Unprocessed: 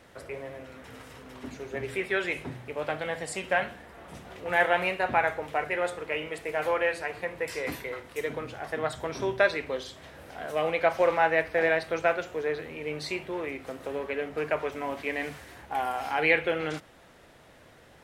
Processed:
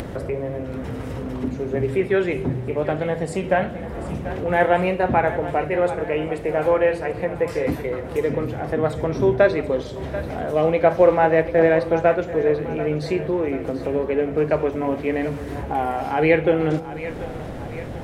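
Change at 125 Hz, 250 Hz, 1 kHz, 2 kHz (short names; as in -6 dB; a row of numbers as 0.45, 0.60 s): +16.5, +14.0, +6.0, +0.5 dB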